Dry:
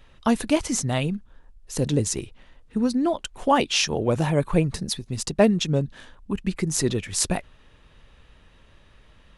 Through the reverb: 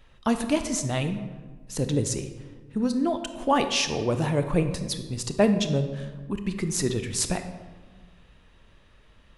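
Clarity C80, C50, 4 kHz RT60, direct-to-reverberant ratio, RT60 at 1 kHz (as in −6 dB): 11.0 dB, 9.5 dB, 0.80 s, 8.0 dB, 1.3 s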